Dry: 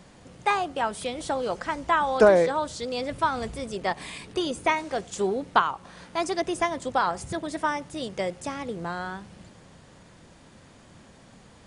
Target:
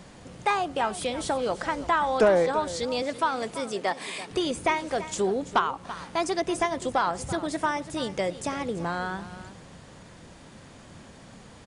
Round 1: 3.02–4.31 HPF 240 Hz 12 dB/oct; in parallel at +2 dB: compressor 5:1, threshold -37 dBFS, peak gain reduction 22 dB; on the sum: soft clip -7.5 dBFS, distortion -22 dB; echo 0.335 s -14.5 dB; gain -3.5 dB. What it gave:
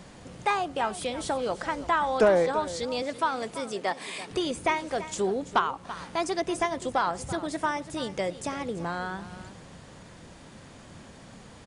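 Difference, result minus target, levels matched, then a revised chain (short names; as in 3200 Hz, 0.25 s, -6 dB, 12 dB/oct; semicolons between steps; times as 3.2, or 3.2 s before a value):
compressor: peak gain reduction +5.5 dB
3.02–4.31 HPF 240 Hz 12 dB/oct; in parallel at +2 dB: compressor 5:1, threshold -30 dBFS, peak gain reduction 16.5 dB; on the sum: soft clip -7.5 dBFS, distortion -21 dB; echo 0.335 s -14.5 dB; gain -3.5 dB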